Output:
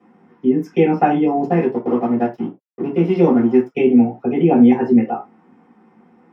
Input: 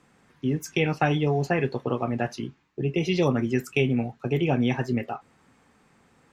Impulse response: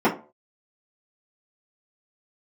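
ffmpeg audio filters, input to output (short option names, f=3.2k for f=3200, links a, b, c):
-filter_complex "[0:a]asettb=1/sr,asplit=3[a][b][c];[a]atrim=end=1.454[d];[b]atrim=start=1.45:end=3.75,asetpts=PTS-STARTPTS,afade=t=in:d=0.004:c=qsin,afade=t=out:st=2.296:d=0.004:c=qsin,aeval=exprs='sgn(val(0))*max(abs(val(0))-0.015,0)':c=same[e];[c]atrim=start=3.746[f];[d][e]acrossfade=d=0.004:c1=hsin:c2=qsin[g];[g][f]acrossfade=d=0.004:c1=qsin:c2=hsin[h];[1:a]atrim=start_sample=2205,afade=t=out:st=0.15:d=0.01,atrim=end_sample=7056[i];[h][i]afir=irnorm=-1:irlink=0,volume=-13.5dB"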